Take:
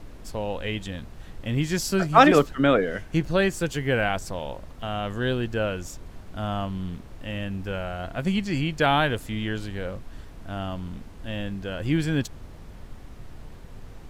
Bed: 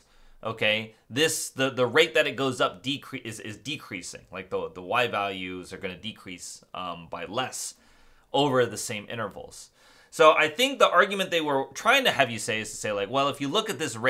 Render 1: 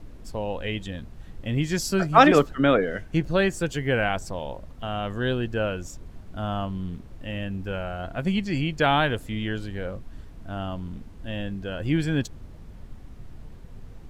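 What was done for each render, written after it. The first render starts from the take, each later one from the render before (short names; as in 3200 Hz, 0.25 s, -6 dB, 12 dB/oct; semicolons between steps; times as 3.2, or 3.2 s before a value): denoiser 6 dB, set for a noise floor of -43 dBFS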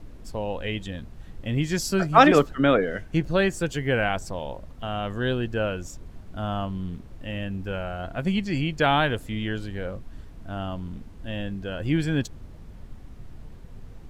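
nothing audible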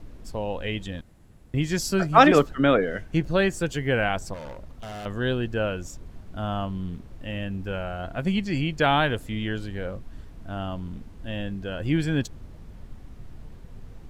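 1.01–1.54 room tone; 4.34–5.06 hard clip -34.5 dBFS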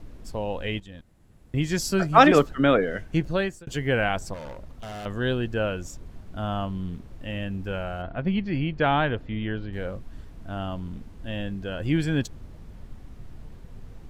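0.8–1.63 fade in, from -12.5 dB; 3.08–3.67 fade out equal-power; 8.02–9.73 air absorption 280 m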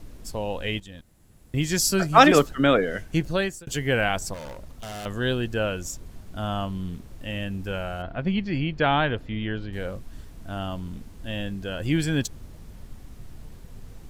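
high shelf 4700 Hz +12 dB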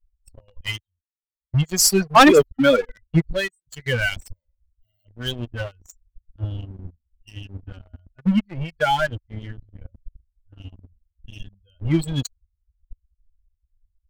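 per-bin expansion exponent 3; sample leveller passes 3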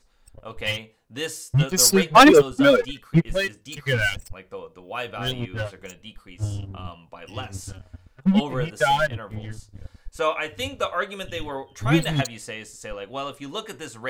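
add bed -6.5 dB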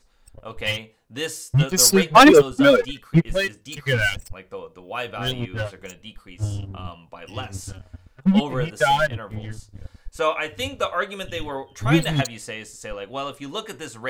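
gain +1.5 dB; limiter -3 dBFS, peak gain reduction 1 dB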